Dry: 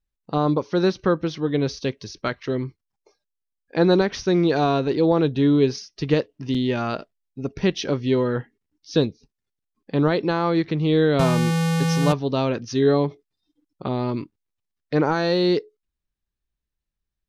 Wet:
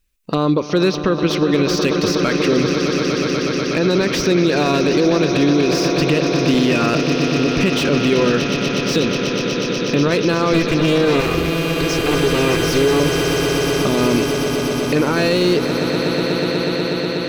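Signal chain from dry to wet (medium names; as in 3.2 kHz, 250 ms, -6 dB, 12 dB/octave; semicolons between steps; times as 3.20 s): 10.53–13.00 s: comb filter that takes the minimum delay 2.5 ms; treble shelf 4.8 kHz +7.5 dB; compression 4:1, threshold -23 dBFS, peak gain reduction 10 dB; graphic EQ with 31 bands 125 Hz -8 dB, 800 Hz -9 dB, 2.5 kHz +8 dB; echo with a slow build-up 122 ms, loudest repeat 8, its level -13 dB; loudness maximiser +18 dB; slew-rate limiter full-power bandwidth 750 Hz; trim -5.5 dB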